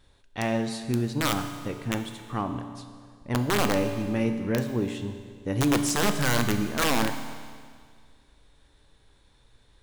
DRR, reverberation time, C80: 7.0 dB, 1.9 s, 9.5 dB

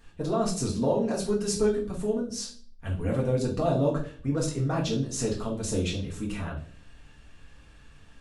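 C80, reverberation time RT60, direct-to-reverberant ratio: 14.5 dB, 0.45 s, -3.5 dB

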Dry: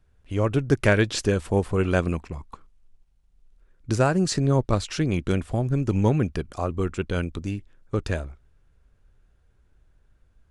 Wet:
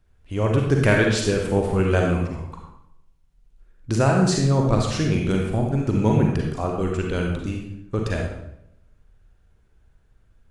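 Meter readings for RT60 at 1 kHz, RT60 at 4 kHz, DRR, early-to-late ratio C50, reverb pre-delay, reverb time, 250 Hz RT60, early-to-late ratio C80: 0.70 s, 0.60 s, 0.0 dB, 2.5 dB, 37 ms, 0.80 s, 0.80 s, 5.5 dB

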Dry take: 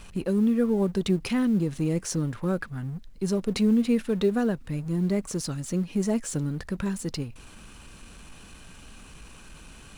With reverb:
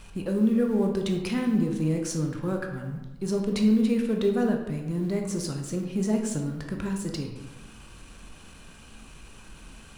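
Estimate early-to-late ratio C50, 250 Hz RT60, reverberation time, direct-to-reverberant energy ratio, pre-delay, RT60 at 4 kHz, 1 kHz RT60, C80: 5.5 dB, 1.1 s, 1.1 s, 2.5 dB, 15 ms, 0.65 s, 1.1 s, 7.5 dB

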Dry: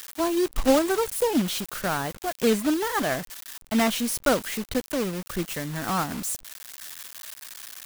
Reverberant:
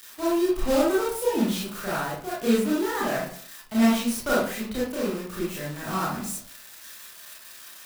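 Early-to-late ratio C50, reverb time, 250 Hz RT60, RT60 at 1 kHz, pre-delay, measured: 1.0 dB, 0.55 s, 0.55 s, 0.50 s, 25 ms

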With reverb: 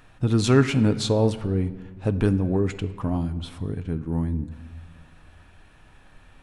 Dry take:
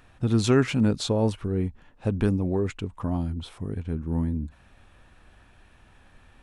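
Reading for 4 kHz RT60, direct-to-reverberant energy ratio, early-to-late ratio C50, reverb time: 1.1 s, 9.5 dB, 14.5 dB, 1.3 s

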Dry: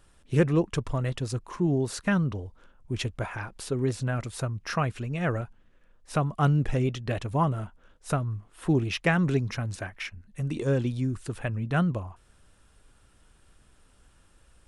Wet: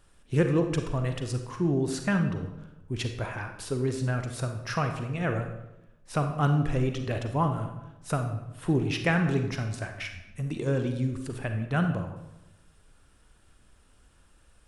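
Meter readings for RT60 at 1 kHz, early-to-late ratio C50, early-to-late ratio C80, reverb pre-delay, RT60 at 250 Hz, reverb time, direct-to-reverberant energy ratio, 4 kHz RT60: 0.85 s, 7.0 dB, 9.5 dB, 35 ms, 1.1 s, 0.90 s, 5.5 dB, 0.65 s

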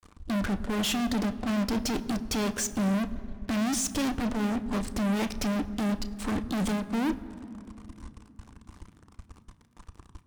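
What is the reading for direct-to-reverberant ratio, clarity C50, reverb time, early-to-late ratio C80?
9.0 dB, 15.5 dB, 2.8 s, 16.0 dB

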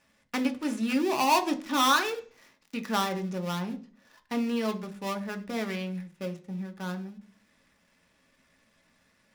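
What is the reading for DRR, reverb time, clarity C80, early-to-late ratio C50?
5.0 dB, 0.45 s, 20.5 dB, 16.5 dB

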